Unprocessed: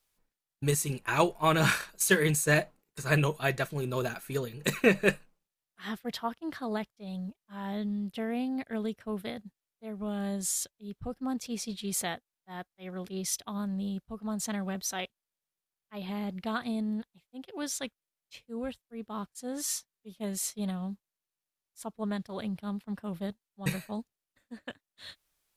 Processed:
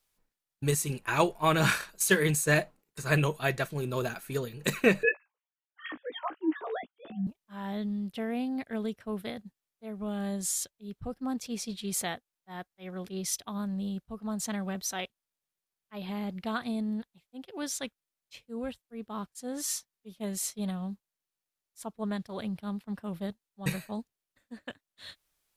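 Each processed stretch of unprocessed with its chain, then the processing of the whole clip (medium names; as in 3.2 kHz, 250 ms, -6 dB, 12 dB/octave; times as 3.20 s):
5.03–7.27 s: formants replaced by sine waves + doubling 16 ms -6 dB
whole clip: none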